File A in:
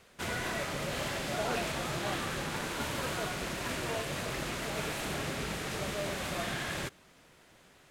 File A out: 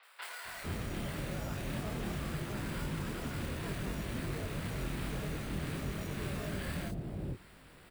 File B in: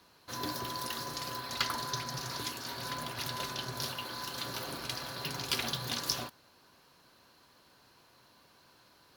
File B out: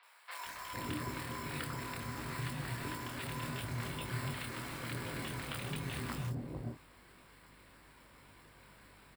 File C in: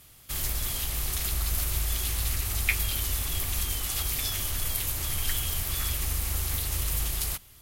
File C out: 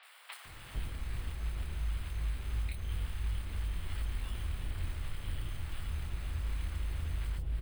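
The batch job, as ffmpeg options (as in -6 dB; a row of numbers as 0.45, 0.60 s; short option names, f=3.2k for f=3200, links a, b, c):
-filter_complex "[0:a]lowpass=9.7k,lowshelf=f=90:g=7.5,acrossover=split=330[a][b];[b]acompressor=threshold=-44dB:ratio=3[c];[a][c]amix=inputs=2:normalize=0,acrossover=split=670|7600[d][e][f];[d]alimiter=limit=-23.5dB:level=0:latency=1:release=30[g];[g][e][f]amix=inputs=3:normalize=0,acompressor=threshold=-36dB:ratio=6,flanger=delay=19:depth=7.5:speed=2.8,acrusher=samples=7:mix=1:aa=0.000001,aeval=exprs='val(0)+0.000251*(sin(2*PI*50*n/s)+sin(2*PI*2*50*n/s)/2+sin(2*PI*3*50*n/s)/3+sin(2*PI*4*50*n/s)/4+sin(2*PI*5*50*n/s)/5)':c=same,acrossover=split=720|4400[h][i][j];[j]adelay=30[k];[h]adelay=450[l];[l][i][k]amix=inputs=3:normalize=0,volume=6dB"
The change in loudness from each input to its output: -4.0, -4.5, -11.0 LU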